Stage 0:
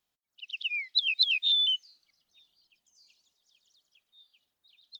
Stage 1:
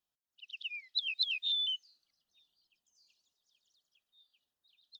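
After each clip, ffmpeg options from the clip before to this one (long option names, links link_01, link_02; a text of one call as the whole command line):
ffmpeg -i in.wav -af "bandreject=frequency=2200:width=5.8,volume=-7.5dB" out.wav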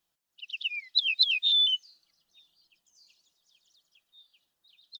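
ffmpeg -i in.wav -af "aecho=1:1:6:0.33,volume=8.5dB" out.wav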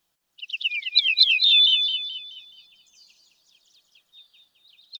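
ffmpeg -i in.wav -filter_complex "[0:a]asplit=2[link_01][link_02];[link_02]adelay=213,lowpass=frequency=3200:poles=1,volume=-3.5dB,asplit=2[link_03][link_04];[link_04]adelay=213,lowpass=frequency=3200:poles=1,volume=0.54,asplit=2[link_05][link_06];[link_06]adelay=213,lowpass=frequency=3200:poles=1,volume=0.54,asplit=2[link_07][link_08];[link_08]adelay=213,lowpass=frequency=3200:poles=1,volume=0.54,asplit=2[link_09][link_10];[link_10]adelay=213,lowpass=frequency=3200:poles=1,volume=0.54,asplit=2[link_11][link_12];[link_12]adelay=213,lowpass=frequency=3200:poles=1,volume=0.54,asplit=2[link_13][link_14];[link_14]adelay=213,lowpass=frequency=3200:poles=1,volume=0.54[link_15];[link_01][link_03][link_05][link_07][link_09][link_11][link_13][link_15]amix=inputs=8:normalize=0,volume=6.5dB" out.wav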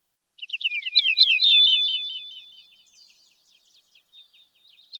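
ffmpeg -i in.wav -ar 48000 -c:a libopus -b:a 24k out.opus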